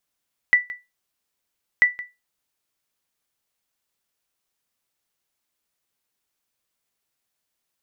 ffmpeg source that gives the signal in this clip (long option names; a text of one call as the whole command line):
ffmpeg -f lavfi -i "aevalsrc='0.447*(sin(2*PI*1970*mod(t,1.29))*exp(-6.91*mod(t,1.29)/0.22)+0.126*sin(2*PI*1970*max(mod(t,1.29)-0.17,0))*exp(-6.91*max(mod(t,1.29)-0.17,0)/0.22))':duration=2.58:sample_rate=44100" out.wav